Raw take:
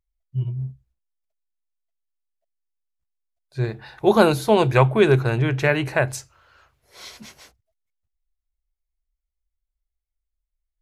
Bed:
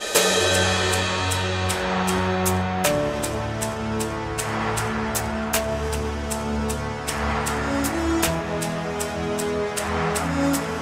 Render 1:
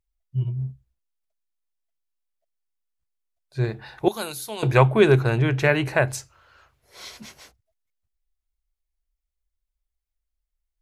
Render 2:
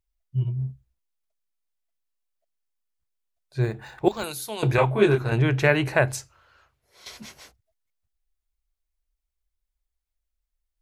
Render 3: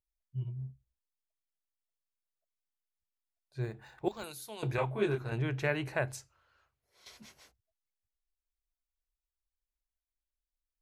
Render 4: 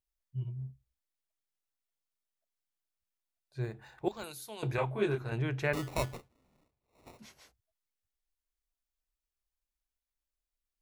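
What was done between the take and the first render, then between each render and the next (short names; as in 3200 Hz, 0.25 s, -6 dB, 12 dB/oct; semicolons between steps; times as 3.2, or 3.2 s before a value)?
4.08–4.63 pre-emphasis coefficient 0.9
3.62–4.24 decimation joined by straight lines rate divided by 4×; 4.76–5.32 detuned doubles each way 32 cents; 6.09–7.06 fade out, to -11 dB
gain -12 dB
5.73–7.19 sample-rate reducer 1600 Hz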